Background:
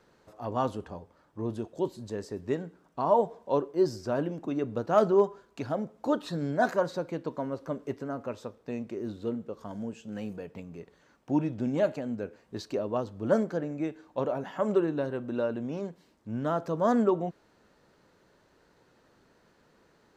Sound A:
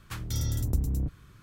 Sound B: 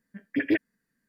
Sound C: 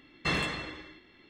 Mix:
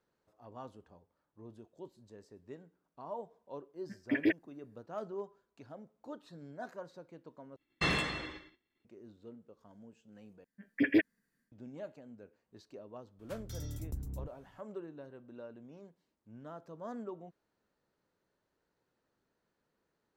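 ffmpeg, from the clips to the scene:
-filter_complex "[2:a]asplit=2[a][b];[0:a]volume=-18.5dB[c];[3:a]agate=range=-33dB:threshold=-45dB:ratio=3:release=100:detection=peak[d];[b]dynaudnorm=f=160:g=3:m=11.5dB[e];[c]asplit=3[f][g][h];[f]atrim=end=7.564[i];[d]atrim=end=1.29,asetpts=PTS-STARTPTS,volume=-1.5dB[j];[g]atrim=start=8.846:end=10.444[k];[e]atrim=end=1.08,asetpts=PTS-STARTPTS,volume=-12.5dB[l];[h]atrim=start=11.516[m];[a]atrim=end=1.08,asetpts=PTS-STARTPTS,volume=-5dB,afade=t=in:d=0.004:c=hsin,afade=t=out:st=1.076:d=0.004:c=hsin,adelay=3750[n];[1:a]atrim=end=1.42,asetpts=PTS-STARTPTS,volume=-13dB,afade=t=in:d=0.004:c=hsin,afade=t=out:st=1.416:d=0.004:c=hsin,adelay=13190[o];[i][j]acrossfade=d=0.004:c1=hsin:c2=hsin[p];[p][k]acrossfade=d=0.004:c1=hsin:c2=hsin[q];[q][l]acrossfade=d=0.004:c1=hsin:c2=hsin[r];[r][m]acrossfade=d=0.004:c1=hsin:c2=hsin[s];[s][n][o]amix=inputs=3:normalize=0"

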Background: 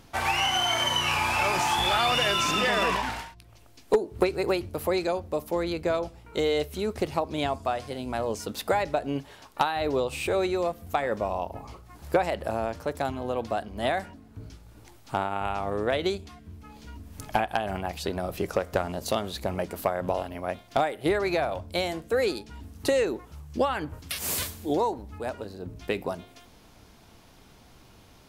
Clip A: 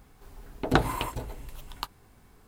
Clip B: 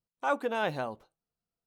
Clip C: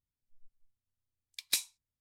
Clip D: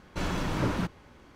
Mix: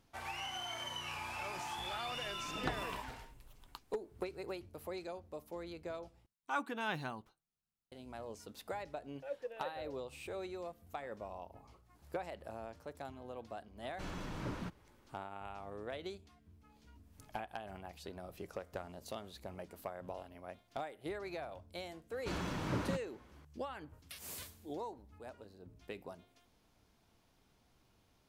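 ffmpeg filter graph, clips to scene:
-filter_complex "[2:a]asplit=2[a][b];[4:a]asplit=2[c][d];[0:a]volume=-17.5dB[e];[a]equalizer=f=550:t=o:w=0.78:g=-12.5[f];[b]asplit=3[g][h][i];[g]bandpass=f=530:t=q:w=8,volume=0dB[j];[h]bandpass=f=1.84k:t=q:w=8,volume=-6dB[k];[i]bandpass=f=2.48k:t=q:w=8,volume=-9dB[l];[j][k][l]amix=inputs=3:normalize=0[m];[d]highpass=53[n];[e]asplit=2[o][p];[o]atrim=end=6.264[q];[f]atrim=end=1.66,asetpts=PTS-STARTPTS,volume=-4dB[r];[p]atrim=start=7.916[s];[1:a]atrim=end=2.47,asetpts=PTS-STARTPTS,volume=-16.5dB,afade=t=in:d=0.004:c=hsin,afade=t=out:st=2.466:d=0.004:c=hsin,adelay=1920[t];[m]atrim=end=1.66,asetpts=PTS-STARTPTS,volume=-6.5dB,afade=t=in:d=0.004:c=hsin,afade=t=out:st=1.656:d=0.004:c=hsin,adelay=8990[u];[c]atrim=end=1.35,asetpts=PTS-STARTPTS,volume=-13dB,afade=t=in:d=0.004:c=hsin,afade=t=out:st=1.346:d=0.004:c=hsin,adelay=13830[v];[n]atrim=end=1.35,asetpts=PTS-STARTPTS,volume=-8dB,afade=t=in:d=0.004:c=hsin,afade=t=out:st=1.346:d=0.004:c=hsin,adelay=22100[w];[q][r]acrossfade=d=0.004:c1=hsin:c2=hsin[x];[x][s]acrossfade=d=0.004:c1=hsin:c2=hsin[y];[y][t][u][v][w]amix=inputs=5:normalize=0"

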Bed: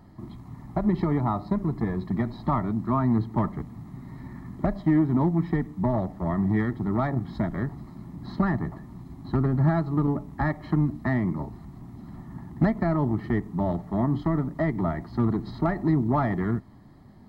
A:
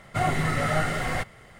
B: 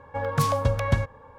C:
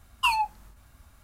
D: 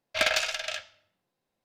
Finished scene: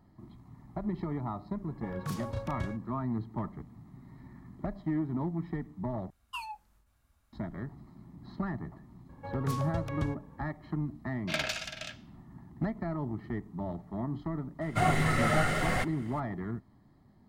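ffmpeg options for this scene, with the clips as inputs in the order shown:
-filter_complex "[2:a]asplit=2[a][b];[0:a]volume=-10.5dB[c];[a]asplit=2[d][e];[e]adelay=33,volume=-3dB[f];[d][f]amix=inputs=2:normalize=0[g];[c]asplit=2[h][i];[h]atrim=end=6.104[j];[3:a]atrim=end=1.23,asetpts=PTS-STARTPTS,volume=-16dB[k];[i]atrim=start=7.326[l];[g]atrim=end=1.38,asetpts=PTS-STARTPTS,volume=-15dB,afade=t=in:d=0.004:c=hsin,afade=t=out:st=1.376:d=0.004:c=hsin,adelay=1680[m];[b]atrim=end=1.38,asetpts=PTS-STARTPTS,volume=-12.5dB,afade=t=in:d=0.004:c=hsin,afade=t=out:st=1.376:d=0.004:c=hsin,adelay=9090[n];[4:a]atrim=end=1.64,asetpts=PTS-STARTPTS,volume=-8dB,afade=t=in:d=0.004:c=hsin,afade=t=out:st=1.636:d=0.004:c=hsin,adelay=11130[o];[1:a]atrim=end=1.59,asetpts=PTS-STARTPTS,volume=-2dB,afade=t=in:d=0.004:c=hsin,afade=t=out:st=1.586:d=0.004:c=hsin,adelay=14610[p];[j][k]acrossfade=d=0.004:c1=hsin:c2=hsin[q];[q][l]acrossfade=d=0.004:c1=hsin:c2=hsin[r];[r][m][n][o][p]amix=inputs=5:normalize=0"

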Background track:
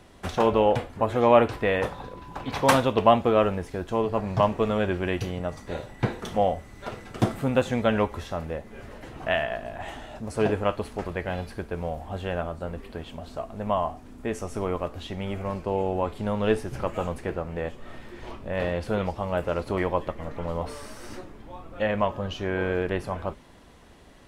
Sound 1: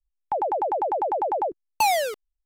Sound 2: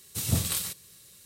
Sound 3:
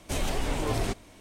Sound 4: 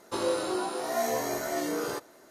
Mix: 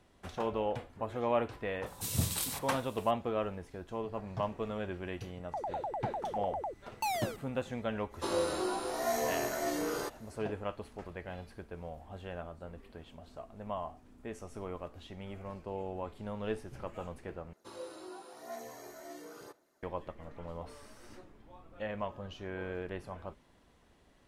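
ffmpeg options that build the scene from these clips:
-filter_complex "[4:a]asplit=2[a][b];[0:a]volume=-13dB[c];[b]aphaser=in_gain=1:out_gain=1:delay=3.2:decay=0.33:speed=0.99:type=sinusoidal[d];[c]asplit=2[e][f];[e]atrim=end=17.534[g];[d]atrim=end=2.3,asetpts=PTS-STARTPTS,volume=-18dB[h];[f]atrim=start=19.826[i];[2:a]atrim=end=1.25,asetpts=PTS-STARTPTS,volume=-5.5dB,afade=t=in:d=0.004:c=hsin,afade=t=out:st=1.246:d=0.004:c=hsin,adelay=1860[j];[1:a]atrim=end=2.45,asetpts=PTS-STARTPTS,volume=-13dB,afade=t=in:d=0.004:c=hsin,afade=t=out:st=2.446:d=0.004:c=hsin,adelay=5220[k];[a]atrim=end=2.3,asetpts=PTS-STARTPTS,volume=-3.5dB,afade=t=in:d=0.05,afade=t=out:st=2.25:d=0.05,adelay=357210S[l];[g][h]acrossfade=d=0.004:c1=hsin:c2=hsin[m];[m][i]acrossfade=d=0.004:c1=hsin:c2=hsin[n];[n][j][k][l]amix=inputs=4:normalize=0"

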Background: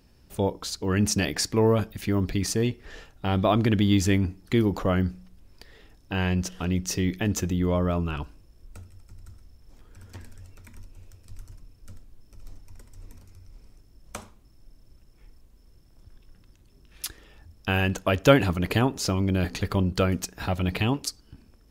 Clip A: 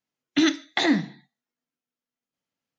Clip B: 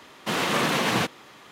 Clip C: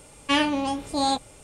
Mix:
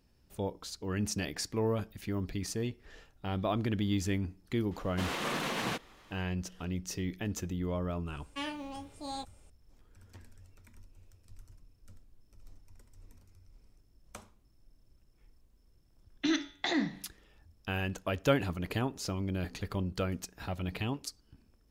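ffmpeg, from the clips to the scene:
-filter_complex "[0:a]volume=-10dB[a];[3:a]acrusher=bits=9:mode=log:mix=0:aa=0.000001[b];[1:a]bandreject=f=95.53:t=h:w=4,bandreject=f=191.06:t=h:w=4,bandreject=f=286.59:t=h:w=4,bandreject=f=382.12:t=h:w=4,bandreject=f=477.65:t=h:w=4,bandreject=f=573.18:t=h:w=4,bandreject=f=668.71:t=h:w=4,bandreject=f=764.24:t=h:w=4,bandreject=f=859.77:t=h:w=4,bandreject=f=955.3:t=h:w=4,bandreject=f=1.05083k:t=h:w=4,bandreject=f=1.14636k:t=h:w=4,bandreject=f=1.24189k:t=h:w=4,bandreject=f=1.33742k:t=h:w=4,bandreject=f=1.43295k:t=h:w=4,bandreject=f=1.52848k:t=h:w=4,bandreject=f=1.62401k:t=h:w=4,bandreject=f=1.71954k:t=h:w=4,bandreject=f=1.81507k:t=h:w=4,bandreject=f=1.9106k:t=h:w=4,bandreject=f=2.00613k:t=h:w=4,bandreject=f=2.10166k:t=h:w=4,bandreject=f=2.19719k:t=h:w=4,bandreject=f=2.29272k:t=h:w=4,bandreject=f=2.38825k:t=h:w=4,bandreject=f=2.48378k:t=h:w=4,bandreject=f=2.57931k:t=h:w=4,bandreject=f=2.67484k:t=h:w=4,bandreject=f=2.77037k:t=h:w=4,bandreject=f=2.8659k:t=h:w=4,bandreject=f=2.96143k:t=h:w=4,bandreject=f=3.05696k:t=h:w=4,bandreject=f=3.15249k:t=h:w=4,bandreject=f=3.24802k:t=h:w=4,bandreject=f=3.34355k:t=h:w=4,bandreject=f=3.43908k:t=h:w=4,bandreject=f=3.53461k:t=h:w=4[c];[2:a]atrim=end=1.51,asetpts=PTS-STARTPTS,volume=-10.5dB,afade=t=in:d=0.004:c=hsin,afade=t=out:st=1.506:d=0.004:c=hsin,adelay=4710[d];[b]atrim=end=1.43,asetpts=PTS-STARTPTS,volume=-16.5dB,afade=t=in:d=0.004:c=hsin,afade=t=out:st=1.426:d=0.004:c=hsin,adelay=8070[e];[c]atrim=end=2.78,asetpts=PTS-STARTPTS,volume=-9dB,afade=t=in:d=0.004:c=hsin,afade=t=out:st=2.776:d=0.004:c=hsin,adelay=15870[f];[a][d][e][f]amix=inputs=4:normalize=0"

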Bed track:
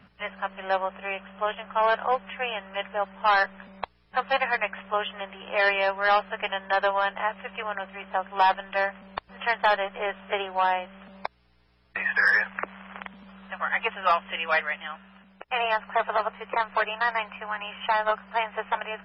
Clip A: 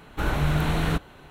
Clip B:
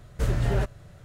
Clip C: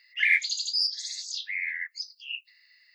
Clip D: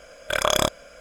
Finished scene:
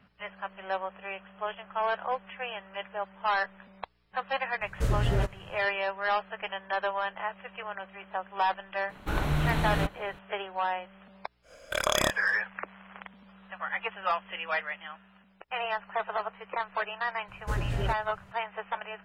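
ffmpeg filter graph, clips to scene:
-filter_complex "[2:a]asplit=2[a][b];[0:a]volume=-6.5dB[c];[a]atrim=end=1.04,asetpts=PTS-STARTPTS,volume=-2dB,afade=t=in:d=0.004:c=hsin,afade=t=out:st=1.036:d=0.004:c=hsin,adelay=203301S[d];[1:a]atrim=end=1.3,asetpts=PTS-STARTPTS,volume=-4dB,afade=t=in:d=0.004:c=hsin,afade=t=out:st=1.296:d=0.004:c=hsin,adelay=8890[e];[4:a]atrim=end=1,asetpts=PTS-STARTPTS,volume=-5.5dB,afade=t=in:d=0.1,afade=t=out:st=0.9:d=0.1,adelay=11420[f];[b]atrim=end=1.04,asetpts=PTS-STARTPTS,volume=-6dB,afade=t=in:d=0.004:c=hsin,afade=t=out:st=1.036:d=0.004:c=hsin,adelay=17280[g];[c][d][e][f][g]amix=inputs=5:normalize=0"

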